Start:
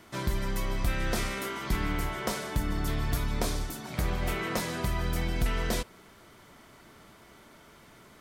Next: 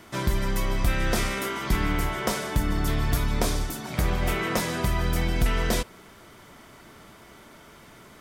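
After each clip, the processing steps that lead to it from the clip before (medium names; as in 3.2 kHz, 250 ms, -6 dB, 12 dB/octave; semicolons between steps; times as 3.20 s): band-stop 4.2 kHz, Q 23; trim +5 dB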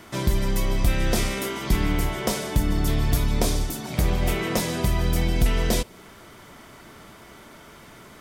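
dynamic bell 1.4 kHz, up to -7 dB, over -46 dBFS, Q 1.1; trim +3 dB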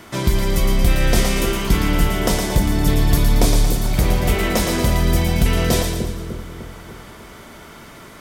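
two-band feedback delay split 530 Hz, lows 301 ms, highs 114 ms, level -5 dB; trim +4.5 dB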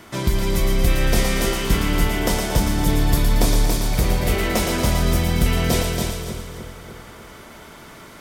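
thinning echo 279 ms, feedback 32%, level -4 dB; trim -2.5 dB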